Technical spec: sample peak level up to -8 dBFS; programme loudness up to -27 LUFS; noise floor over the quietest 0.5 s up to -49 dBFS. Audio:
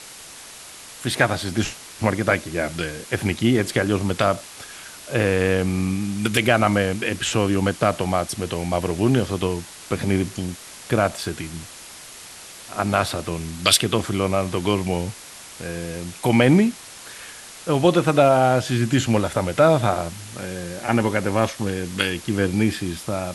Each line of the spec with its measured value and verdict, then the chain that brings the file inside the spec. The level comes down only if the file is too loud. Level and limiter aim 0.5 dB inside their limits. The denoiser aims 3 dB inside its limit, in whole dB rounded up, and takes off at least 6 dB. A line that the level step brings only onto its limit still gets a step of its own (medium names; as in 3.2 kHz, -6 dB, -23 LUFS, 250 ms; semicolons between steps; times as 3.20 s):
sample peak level -2.0 dBFS: fail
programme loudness -21.5 LUFS: fail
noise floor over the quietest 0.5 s -41 dBFS: fail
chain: noise reduction 6 dB, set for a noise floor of -41 dBFS; trim -6 dB; peak limiter -8.5 dBFS